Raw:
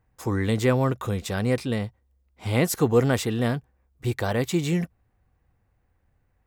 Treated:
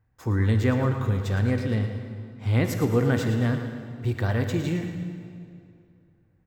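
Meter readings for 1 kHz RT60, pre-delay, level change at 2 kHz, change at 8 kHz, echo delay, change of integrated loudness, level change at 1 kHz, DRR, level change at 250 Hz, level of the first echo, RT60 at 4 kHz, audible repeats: 2.3 s, 22 ms, −1.0 dB, −9.0 dB, 112 ms, −0.5 dB, −3.5 dB, 5.0 dB, −0.5 dB, −10.0 dB, 1.8 s, 2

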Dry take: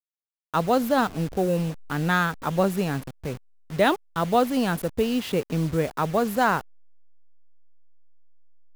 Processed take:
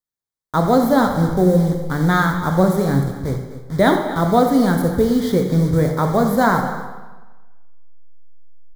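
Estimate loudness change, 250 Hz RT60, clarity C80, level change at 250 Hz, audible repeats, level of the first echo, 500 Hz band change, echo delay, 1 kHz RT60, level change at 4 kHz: +7.0 dB, 1.2 s, 7.0 dB, +9.5 dB, 2, −12.0 dB, +6.5 dB, 86 ms, 1.2 s, +2.0 dB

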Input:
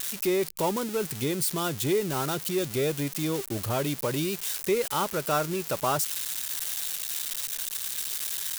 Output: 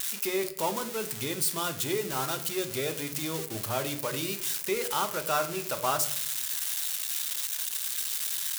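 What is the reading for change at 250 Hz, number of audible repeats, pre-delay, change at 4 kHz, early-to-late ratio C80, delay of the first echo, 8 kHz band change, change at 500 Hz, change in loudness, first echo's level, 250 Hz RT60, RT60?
−6.5 dB, no echo audible, 8 ms, +0.5 dB, 16.5 dB, no echo audible, +0.5 dB, −4.0 dB, −1.0 dB, no echo audible, 0.90 s, 0.60 s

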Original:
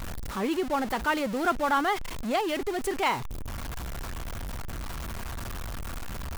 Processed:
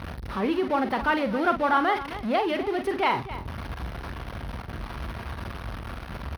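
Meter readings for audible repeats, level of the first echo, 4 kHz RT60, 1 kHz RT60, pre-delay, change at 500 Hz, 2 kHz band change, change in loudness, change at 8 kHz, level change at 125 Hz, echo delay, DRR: 2, −9.5 dB, no reverb audible, no reverb audible, no reverb audible, +3.0 dB, +2.5 dB, +2.5 dB, below −10 dB, +2.5 dB, 45 ms, no reverb audible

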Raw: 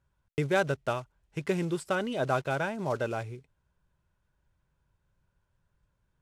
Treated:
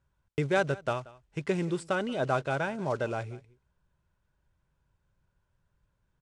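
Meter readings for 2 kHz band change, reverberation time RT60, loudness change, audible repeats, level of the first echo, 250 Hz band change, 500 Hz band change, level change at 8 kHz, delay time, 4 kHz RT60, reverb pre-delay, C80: 0.0 dB, no reverb audible, 0.0 dB, 1, −21.0 dB, 0.0 dB, 0.0 dB, −2.0 dB, 182 ms, no reverb audible, no reverb audible, no reverb audible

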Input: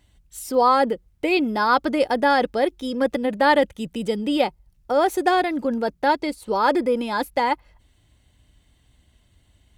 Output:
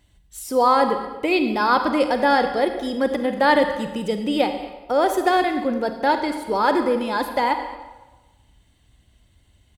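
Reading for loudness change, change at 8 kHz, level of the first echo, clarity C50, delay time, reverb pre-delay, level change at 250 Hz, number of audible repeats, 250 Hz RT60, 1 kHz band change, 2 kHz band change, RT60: +1.0 dB, +0.5 dB, −18.5 dB, 7.5 dB, 229 ms, 34 ms, +1.0 dB, 1, 1.1 s, +1.0 dB, +1.0 dB, 1.2 s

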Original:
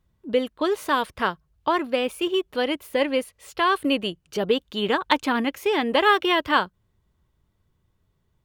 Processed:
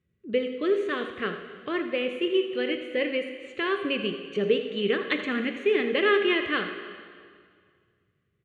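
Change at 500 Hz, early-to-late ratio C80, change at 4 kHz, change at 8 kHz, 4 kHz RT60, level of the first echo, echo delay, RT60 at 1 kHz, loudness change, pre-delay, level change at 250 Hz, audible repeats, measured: −1.0 dB, 7.5 dB, −5.0 dB, below −15 dB, 1.9 s, −12.5 dB, 82 ms, 2.0 s, −3.5 dB, 5 ms, −3.0 dB, 1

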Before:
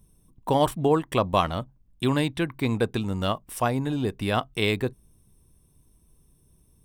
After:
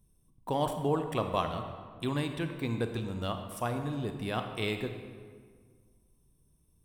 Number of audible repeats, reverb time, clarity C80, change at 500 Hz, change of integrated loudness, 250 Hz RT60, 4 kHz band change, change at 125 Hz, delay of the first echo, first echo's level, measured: no echo audible, 1.8 s, 8.0 dB, −8.0 dB, −8.0 dB, 2.1 s, −8.5 dB, −6.5 dB, no echo audible, no echo audible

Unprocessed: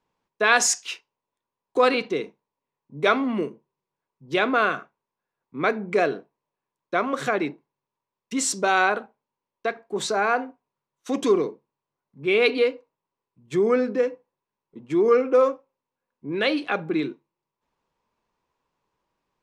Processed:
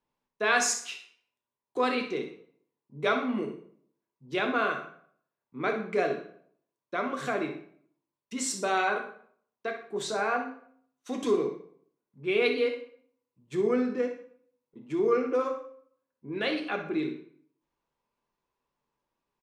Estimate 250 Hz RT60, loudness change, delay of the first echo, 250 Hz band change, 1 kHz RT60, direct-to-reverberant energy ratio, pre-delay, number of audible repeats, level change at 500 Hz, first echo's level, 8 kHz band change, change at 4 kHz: 0.70 s, −6.5 dB, 61 ms, −5.0 dB, 0.60 s, 2.5 dB, 5 ms, 1, −6.5 dB, −11.0 dB, −6.5 dB, −6.0 dB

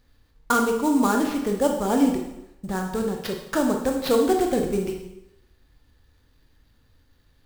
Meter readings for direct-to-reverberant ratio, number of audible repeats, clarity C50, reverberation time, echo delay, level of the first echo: 2.0 dB, no echo audible, 5.5 dB, 0.90 s, no echo audible, no echo audible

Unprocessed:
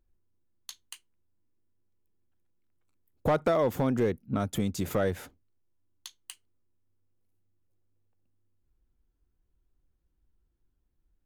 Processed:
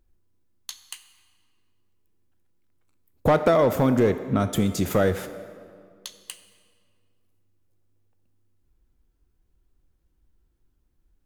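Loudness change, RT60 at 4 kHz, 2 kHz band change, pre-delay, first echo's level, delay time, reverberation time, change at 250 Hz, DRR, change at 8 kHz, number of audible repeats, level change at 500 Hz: +6.5 dB, 1.4 s, +7.0 dB, 20 ms, no echo audible, no echo audible, 2.1 s, +7.0 dB, 10.0 dB, +7.0 dB, no echo audible, +7.0 dB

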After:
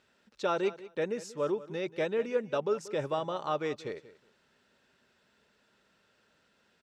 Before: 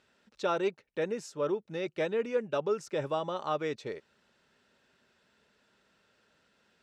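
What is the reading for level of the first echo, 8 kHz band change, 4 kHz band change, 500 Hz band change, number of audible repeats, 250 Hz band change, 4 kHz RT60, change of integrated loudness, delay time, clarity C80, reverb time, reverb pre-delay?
−17.0 dB, 0.0 dB, 0.0 dB, 0.0 dB, 2, 0.0 dB, no reverb audible, 0.0 dB, 185 ms, no reverb audible, no reverb audible, no reverb audible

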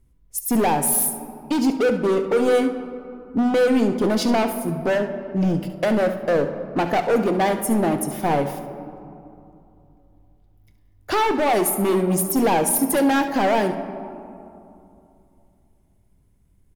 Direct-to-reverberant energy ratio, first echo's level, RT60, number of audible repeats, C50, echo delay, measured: 6.5 dB, −12.5 dB, 2.8 s, 1, 8.5 dB, 70 ms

